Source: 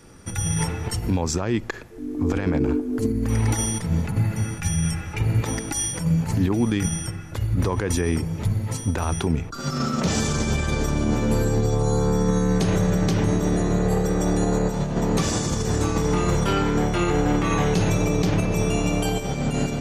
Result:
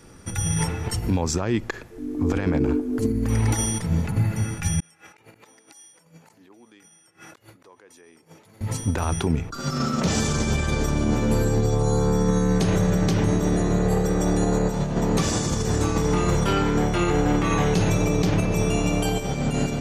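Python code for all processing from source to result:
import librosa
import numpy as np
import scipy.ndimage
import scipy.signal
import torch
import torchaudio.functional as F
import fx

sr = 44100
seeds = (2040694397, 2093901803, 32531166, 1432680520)

y = fx.chain(x, sr, fx.highpass(hz=400.0, slope=12),
    fx.gate_flip(shuts_db=-25.0, range_db=-29),
    fx.over_compress(threshold_db=-49.0, ratio=-1.0), at=(4.8, 8.61))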